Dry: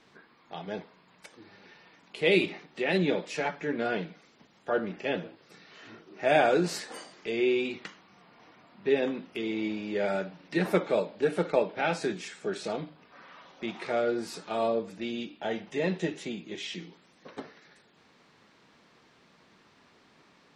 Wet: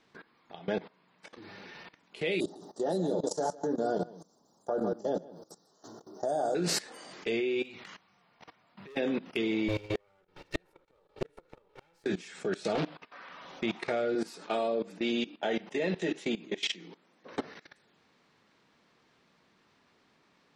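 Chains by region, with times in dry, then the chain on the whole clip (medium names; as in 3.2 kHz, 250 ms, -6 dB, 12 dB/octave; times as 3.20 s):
0.59–1.38 s: high-pass 120 Hz + distance through air 72 m
2.40–6.55 s: Chebyshev band-stop 840–6300 Hz + tilt EQ +2 dB/octave + delay 155 ms -9 dB
7.62–8.97 s: peaking EQ 300 Hz -7 dB 1.2 oct + overload inside the chain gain 28 dB + compression, threshold -46 dBFS
9.68–12.06 s: comb filter that takes the minimum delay 2.2 ms + de-hum 424.7 Hz, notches 11 + inverted gate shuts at -25 dBFS, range -35 dB
12.75–13.29 s: expander -52 dBFS + overdrive pedal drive 16 dB, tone 4.2 kHz, clips at -21.5 dBFS + loudspeaker Doppler distortion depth 0.43 ms
14.15–17.31 s: high-pass 210 Hz + tape noise reduction on one side only decoder only
whole clip: dynamic bell 1 kHz, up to -5 dB, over -45 dBFS, Q 2.7; level held to a coarse grid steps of 19 dB; trim +8.5 dB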